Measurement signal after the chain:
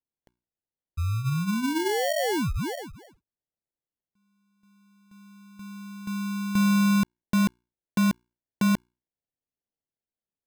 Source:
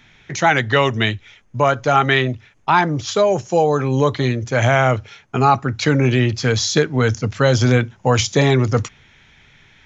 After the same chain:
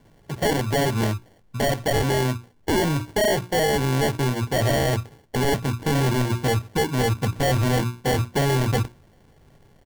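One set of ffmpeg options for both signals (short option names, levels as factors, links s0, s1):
-af "lowpass=f=1500:w=0.5412,lowpass=f=1500:w=1.3066,bandreject=f=60:t=h:w=6,bandreject=f=120:t=h:w=6,bandreject=f=180:t=h:w=6,bandreject=f=240:t=h:w=6,bandreject=f=300:t=h:w=6,bandreject=f=360:t=h:w=6,aresample=8000,asoftclip=type=hard:threshold=0.126,aresample=44100,acrusher=samples=35:mix=1:aa=0.000001"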